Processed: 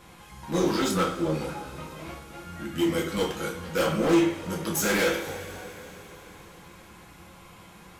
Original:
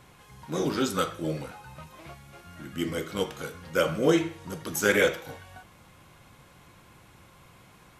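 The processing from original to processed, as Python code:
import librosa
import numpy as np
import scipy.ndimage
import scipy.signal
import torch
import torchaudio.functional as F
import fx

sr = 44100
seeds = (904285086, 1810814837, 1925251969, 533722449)

y = fx.high_shelf(x, sr, hz=4300.0, db=-11.5, at=(0.91, 1.34))
y = np.clip(y, -10.0 ** (-26.0 / 20.0), 10.0 ** (-26.0 / 20.0))
y = fx.rev_double_slope(y, sr, seeds[0], early_s=0.29, late_s=4.5, knee_db=-21, drr_db=-1.5)
y = F.gain(torch.from_numpy(y), 1.5).numpy()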